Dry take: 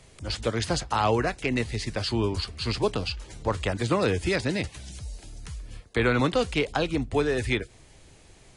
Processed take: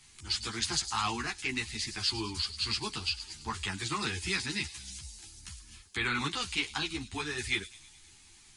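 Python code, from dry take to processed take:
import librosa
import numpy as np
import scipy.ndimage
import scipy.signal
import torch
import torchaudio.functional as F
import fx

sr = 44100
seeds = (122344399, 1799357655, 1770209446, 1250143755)

p1 = fx.curve_eq(x, sr, hz=(380.0, 560.0, 810.0, 4800.0), db=(0, -21, 3, 13))
p2 = p1 + fx.echo_wet_highpass(p1, sr, ms=105, feedback_pct=59, hz=5400.0, wet_db=-7.5, dry=0)
p3 = fx.ensemble(p2, sr)
y = p3 * 10.0 ** (-8.0 / 20.0)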